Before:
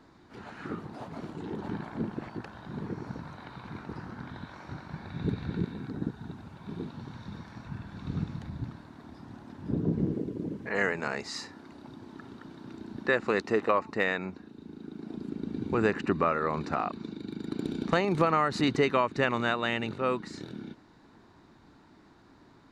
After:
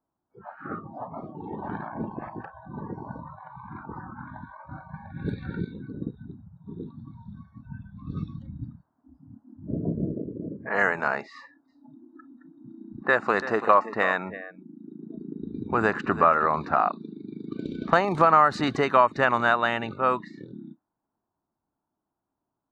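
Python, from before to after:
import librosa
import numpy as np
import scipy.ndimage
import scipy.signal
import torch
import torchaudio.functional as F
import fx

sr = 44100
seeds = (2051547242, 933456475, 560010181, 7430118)

y = fx.echo_single(x, sr, ms=336, db=-13.0, at=(11.67, 16.49), fade=0.02)
y = fx.noise_reduce_blind(y, sr, reduce_db=28)
y = fx.env_lowpass(y, sr, base_hz=800.0, full_db=-23.0)
y = fx.band_shelf(y, sr, hz=1000.0, db=9.0, octaves=1.7)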